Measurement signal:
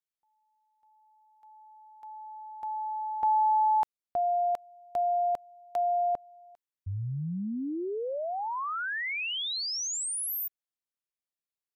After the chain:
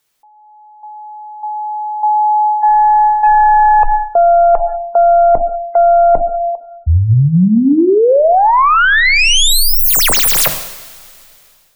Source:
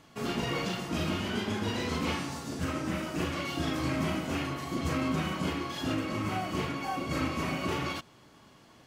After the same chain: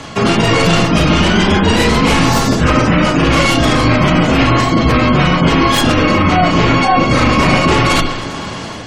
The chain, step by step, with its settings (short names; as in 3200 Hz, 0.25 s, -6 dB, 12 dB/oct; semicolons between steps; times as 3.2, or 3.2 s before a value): tracing distortion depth 0.14 ms; frequency shift -16 Hz; notches 50/100/150/200/250/300/350 Hz; two-slope reverb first 0.83 s, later 3.1 s, from -18 dB, DRR 13 dB; in parallel at -8.5 dB: soft clip -28.5 dBFS; on the sum: AGC gain up to 5 dB; spectral gate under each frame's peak -30 dB strong; reverse; compressor 8:1, threshold -33 dBFS; reverse; maximiser +26.5 dB; gain -1 dB